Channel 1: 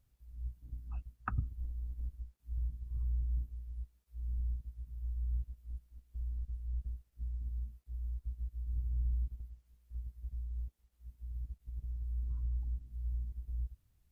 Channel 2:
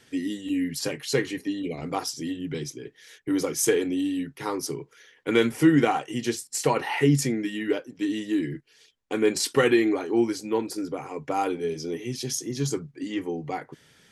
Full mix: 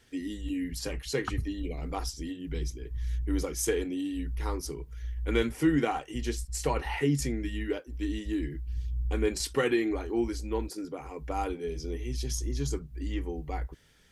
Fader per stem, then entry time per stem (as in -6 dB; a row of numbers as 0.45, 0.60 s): +2.5, -6.5 dB; 0.00, 0.00 s